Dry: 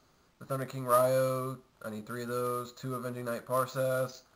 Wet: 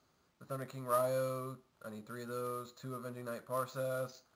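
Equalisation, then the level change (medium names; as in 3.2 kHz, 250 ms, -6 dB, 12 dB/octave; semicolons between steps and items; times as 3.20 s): high-pass 58 Hz; -7.0 dB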